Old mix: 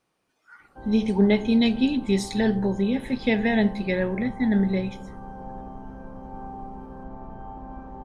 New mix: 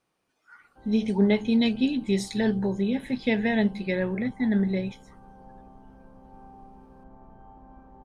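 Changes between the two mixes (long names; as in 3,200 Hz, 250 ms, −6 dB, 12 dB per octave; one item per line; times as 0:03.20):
background −11.0 dB
reverb: off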